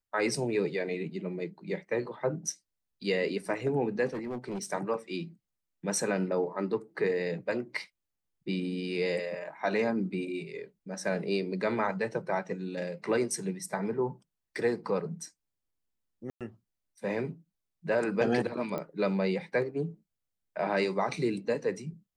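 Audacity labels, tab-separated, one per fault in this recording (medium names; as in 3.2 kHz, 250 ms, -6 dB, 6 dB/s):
4.070000	4.660000	clipped -31.5 dBFS
16.300000	16.410000	dropout 107 ms
18.780000	18.780000	pop -22 dBFS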